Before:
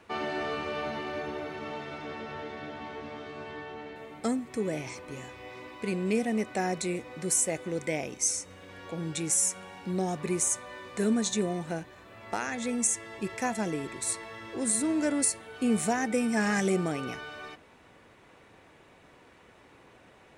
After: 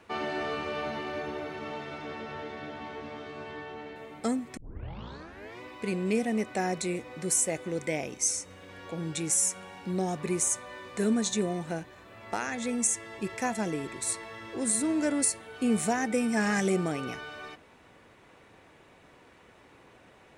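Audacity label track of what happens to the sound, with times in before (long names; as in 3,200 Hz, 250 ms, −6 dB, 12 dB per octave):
4.570000	4.570000	tape start 1.04 s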